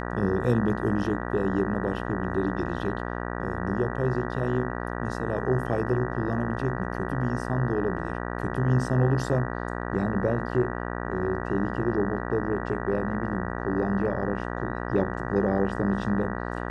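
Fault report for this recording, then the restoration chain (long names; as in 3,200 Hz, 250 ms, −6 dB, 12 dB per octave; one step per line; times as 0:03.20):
mains buzz 60 Hz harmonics 32 −32 dBFS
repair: hum removal 60 Hz, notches 32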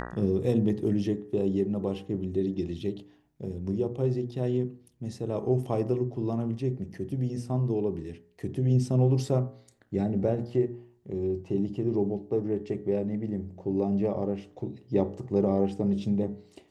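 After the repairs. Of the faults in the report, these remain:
none of them is left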